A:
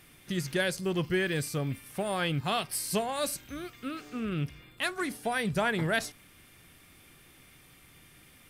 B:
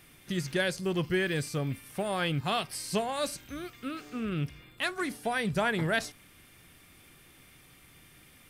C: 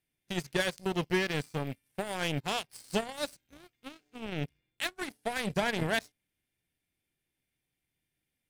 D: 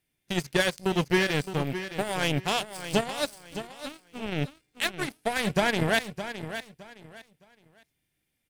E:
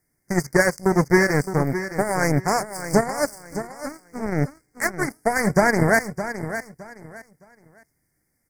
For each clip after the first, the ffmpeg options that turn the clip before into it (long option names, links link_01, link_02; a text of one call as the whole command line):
ffmpeg -i in.wav -filter_complex "[0:a]acrossover=split=8400[link_01][link_02];[link_02]acompressor=threshold=-48dB:ratio=4:attack=1:release=60[link_03];[link_01][link_03]amix=inputs=2:normalize=0" out.wav
ffmpeg -i in.wav -af "equalizer=frequency=1200:width_type=o:width=0.27:gain=-14.5,aeval=exprs='0.141*(cos(1*acos(clip(val(0)/0.141,-1,1)))-cos(1*PI/2))+0.0126*(cos(3*acos(clip(val(0)/0.141,-1,1)))-cos(3*PI/2))+0.0141*(cos(7*acos(clip(val(0)/0.141,-1,1)))-cos(7*PI/2))':channel_layout=same,volume=1.5dB" out.wav
ffmpeg -i in.wav -af "aecho=1:1:614|1228|1842:0.282|0.0705|0.0176,volume=5.5dB" out.wav
ffmpeg -i in.wav -af "asuperstop=centerf=3200:order=12:qfactor=1.2,volume=7.5dB" out.wav